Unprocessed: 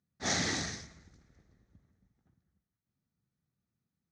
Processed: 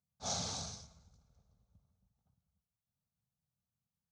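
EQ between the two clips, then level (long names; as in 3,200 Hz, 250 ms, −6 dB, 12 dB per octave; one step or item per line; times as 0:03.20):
phaser with its sweep stopped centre 780 Hz, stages 4
−3.5 dB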